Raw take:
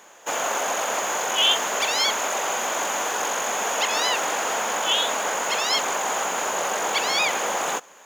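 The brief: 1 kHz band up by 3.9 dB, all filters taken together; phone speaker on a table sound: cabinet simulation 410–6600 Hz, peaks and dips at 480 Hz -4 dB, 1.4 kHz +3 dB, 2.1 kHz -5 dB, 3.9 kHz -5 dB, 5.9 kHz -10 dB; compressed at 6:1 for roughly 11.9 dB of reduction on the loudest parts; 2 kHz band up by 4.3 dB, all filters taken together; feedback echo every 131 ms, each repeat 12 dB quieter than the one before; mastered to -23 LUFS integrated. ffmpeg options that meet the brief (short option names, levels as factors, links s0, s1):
-af "equalizer=f=1000:t=o:g=3,equalizer=f=2000:t=o:g=6,acompressor=threshold=0.0447:ratio=6,highpass=f=410:w=0.5412,highpass=f=410:w=1.3066,equalizer=f=480:t=q:w=4:g=-4,equalizer=f=1400:t=q:w=4:g=3,equalizer=f=2100:t=q:w=4:g=-5,equalizer=f=3900:t=q:w=4:g=-5,equalizer=f=5900:t=q:w=4:g=-10,lowpass=f=6600:w=0.5412,lowpass=f=6600:w=1.3066,aecho=1:1:131|262|393:0.251|0.0628|0.0157,volume=2.11"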